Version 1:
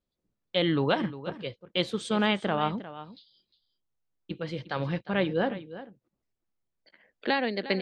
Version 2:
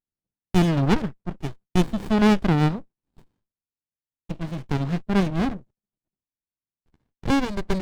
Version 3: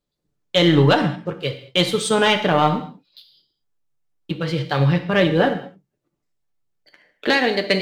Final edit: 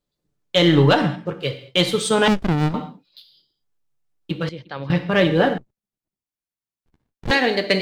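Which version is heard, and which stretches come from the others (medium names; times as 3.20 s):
3
2.28–2.74 s: from 2
4.49–4.90 s: from 1
5.58–7.31 s: from 2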